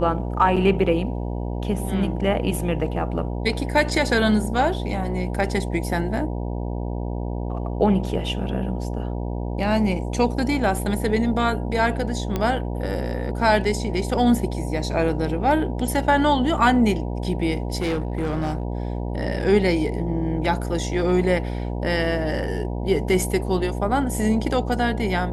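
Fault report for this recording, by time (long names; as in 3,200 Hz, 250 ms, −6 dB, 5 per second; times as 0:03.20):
mains buzz 60 Hz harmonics 16 −27 dBFS
0:00.56–0:00.57: drop-out 5.9 ms
0:12.36: click −11 dBFS
0:17.75–0:18.63: clipping −20 dBFS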